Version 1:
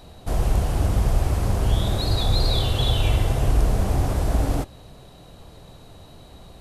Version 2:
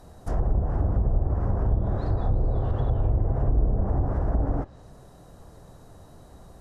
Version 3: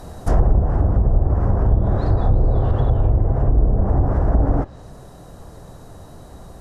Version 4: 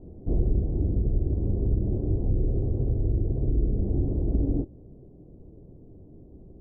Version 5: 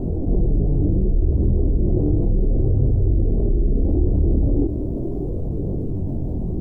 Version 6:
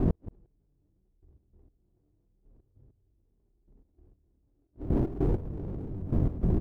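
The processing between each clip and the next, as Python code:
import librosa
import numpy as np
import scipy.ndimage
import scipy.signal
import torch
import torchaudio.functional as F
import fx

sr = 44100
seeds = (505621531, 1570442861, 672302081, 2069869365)

y1 = fx.env_lowpass_down(x, sr, base_hz=600.0, full_db=-14.5)
y1 = fx.band_shelf(y1, sr, hz=3100.0, db=-11.0, octaves=1.2)
y1 = y1 * 10.0 ** (-3.0 / 20.0)
y2 = fx.rider(y1, sr, range_db=10, speed_s=0.5)
y2 = y2 * 10.0 ** (7.5 / 20.0)
y3 = fx.ladder_lowpass(y2, sr, hz=420.0, resonance_pct=45)
y4 = fx.chorus_voices(y3, sr, voices=2, hz=0.35, base_ms=24, depth_ms=3.6, mix_pct=60)
y4 = fx.env_flatten(y4, sr, amount_pct=70)
y4 = y4 * 10.0 ** (6.0 / 20.0)
y5 = fx.lower_of_two(y4, sr, delay_ms=0.34)
y5 = fx.gate_flip(y5, sr, shuts_db=-13.0, range_db=-41)
y5 = fx.step_gate(y5, sr, bpm=98, pattern='x.x.....', floor_db=-12.0, edge_ms=4.5)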